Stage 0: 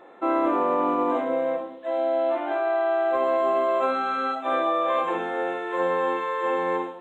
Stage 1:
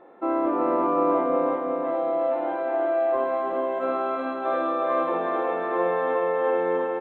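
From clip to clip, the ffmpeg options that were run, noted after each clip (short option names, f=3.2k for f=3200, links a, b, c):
-af "lowpass=f=1k:p=1,aecho=1:1:366|732|1098|1464|1830|2196|2562|2928|3294:0.708|0.418|0.246|0.145|0.0858|0.0506|0.0299|0.0176|0.0104"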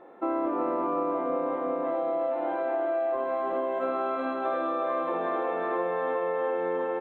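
-af "acompressor=threshold=-25dB:ratio=6"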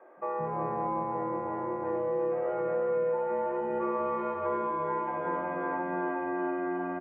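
-filter_complex "[0:a]highpass=f=440:t=q:w=0.5412,highpass=f=440:t=q:w=1.307,lowpass=f=2.6k:t=q:w=0.5176,lowpass=f=2.6k:t=q:w=0.7071,lowpass=f=2.6k:t=q:w=1.932,afreqshift=-170,acrossover=split=360[a][b];[a]adelay=170[c];[c][b]amix=inputs=2:normalize=0"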